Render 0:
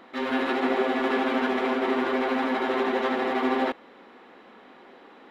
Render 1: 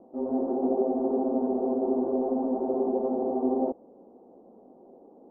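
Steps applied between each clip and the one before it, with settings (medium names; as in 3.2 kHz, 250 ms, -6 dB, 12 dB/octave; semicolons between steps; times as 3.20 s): steep low-pass 730 Hz 36 dB/octave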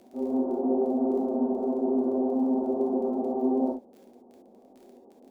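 crackle 21 per s -41 dBFS; gated-style reverb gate 90 ms flat, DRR 0.5 dB; trim -4 dB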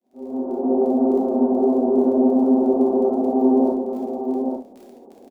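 fade-in on the opening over 0.87 s; delay 840 ms -5.5 dB; trim +7.5 dB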